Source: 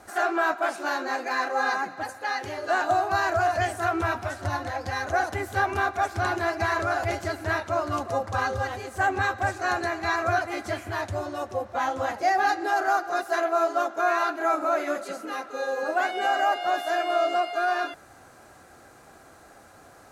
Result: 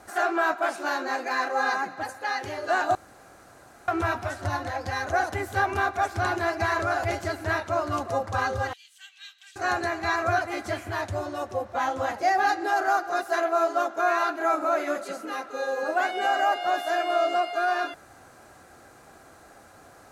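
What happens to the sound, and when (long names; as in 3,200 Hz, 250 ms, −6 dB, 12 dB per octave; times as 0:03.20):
0:02.95–0:03.88: fill with room tone
0:08.73–0:09.56: four-pole ladder high-pass 2,900 Hz, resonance 70%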